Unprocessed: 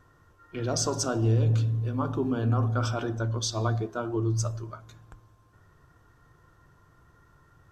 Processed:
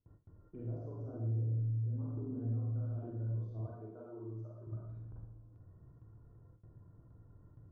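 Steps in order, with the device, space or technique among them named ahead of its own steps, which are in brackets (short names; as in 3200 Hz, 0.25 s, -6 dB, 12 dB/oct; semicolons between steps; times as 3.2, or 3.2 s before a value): 3.61–4.67 weighting filter A; television next door (compressor 4:1, threshold -42 dBFS, peak gain reduction 18 dB; LPF 390 Hz 12 dB/oct; reverb RT60 0.75 s, pre-delay 37 ms, DRR -5 dB); gate with hold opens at -47 dBFS; gain -4 dB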